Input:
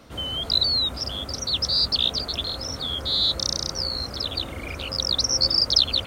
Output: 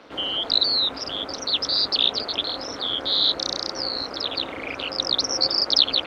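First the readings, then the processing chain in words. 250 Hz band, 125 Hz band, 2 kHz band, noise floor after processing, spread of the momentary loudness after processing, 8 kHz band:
+1.5 dB, -12.0 dB, +4.5 dB, -36 dBFS, 10 LU, -5.0 dB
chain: AM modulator 210 Hz, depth 75%; three-band isolator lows -19 dB, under 250 Hz, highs -21 dB, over 4.8 kHz; trim +8 dB

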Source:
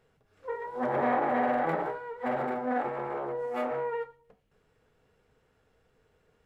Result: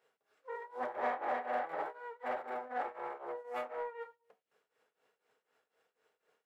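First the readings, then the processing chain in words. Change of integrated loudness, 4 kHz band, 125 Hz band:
-9.0 dB, no reading, under -25 dB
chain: high-pass 510 Hz 12 dB/octave; tremolo triangle 4 Hz, depth 90%; in parallel at -8 dB: saturation -33.5 dBFS, distortion -9 dB; on the sum: trim -4.5 dB

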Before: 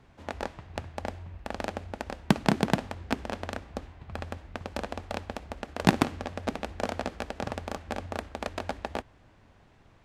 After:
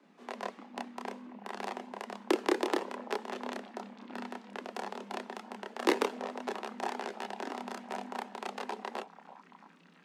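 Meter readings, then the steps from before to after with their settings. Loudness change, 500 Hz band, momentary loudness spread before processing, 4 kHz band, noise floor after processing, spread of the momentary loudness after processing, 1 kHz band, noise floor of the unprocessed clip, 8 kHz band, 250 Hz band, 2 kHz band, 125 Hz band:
-4.0 dB, -1.5 dB, 14 LU, -4.0 dB, -61 dBFS, 14 LU, -2.5 dB, -59 dBFS, -4.0 dB, -6.5 dB, -4.0 dB, under -20 dB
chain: frequency shift +160 Hz; repeats whose band climbs or falls 336 ms, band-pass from 700 Hz, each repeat 0.7 oct, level -12 dB; chorus voices 4, 0.3 Hz, delay 29 ms, depth 1.3 ms; trim -1.5 dB

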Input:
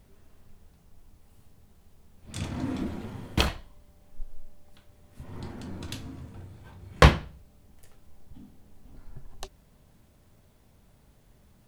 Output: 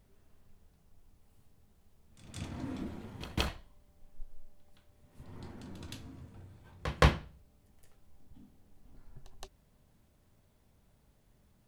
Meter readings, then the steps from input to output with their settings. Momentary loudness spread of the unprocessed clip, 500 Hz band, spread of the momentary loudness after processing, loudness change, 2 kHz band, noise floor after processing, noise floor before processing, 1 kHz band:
26 LU, -8.0 dB, 26 LU, -8.0 dB, -8.0 dB, -68 dBFS, -60 dBFS, -8.0 dB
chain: pre-echo 169 ms -14 dB; trim -8 dB

